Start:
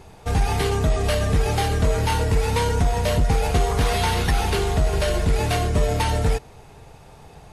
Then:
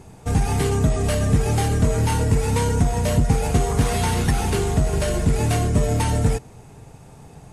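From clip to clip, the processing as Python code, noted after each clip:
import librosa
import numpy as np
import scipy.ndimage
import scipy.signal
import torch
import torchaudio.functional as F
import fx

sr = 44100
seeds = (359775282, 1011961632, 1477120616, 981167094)

y = fx.graphic_eq_10(x, sr, hz=(125, 250, 4000, 8000), db=(7, 7, -4, 8))
y = y * 10.0 ** (-2.5 / 20.0)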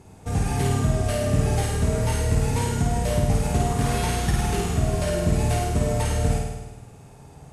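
y = fx.room_flutter(x, sr, wall_m=8.9, rt60_s=1.1)
y = fx.cheby_harmonics(y, sr, harmonics=(3, 5), levels_db=(-29, -37), full_scale_db=-3.5)
y = y * 10.0 ** (-5.0 / 20.0)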